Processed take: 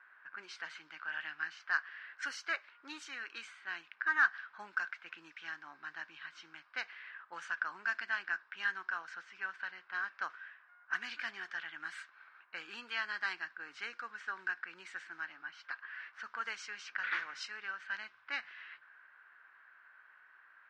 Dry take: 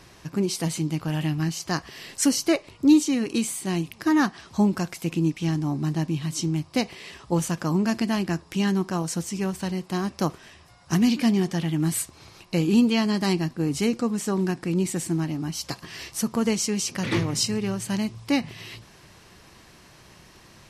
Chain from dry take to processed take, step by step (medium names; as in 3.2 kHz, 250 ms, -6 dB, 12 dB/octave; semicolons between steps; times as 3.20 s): level-controlled noise filter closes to 1.5 kHz, open at -17 dBFS; ladder band-pass 1.6 kHz, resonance 80%; trim +3.5 dB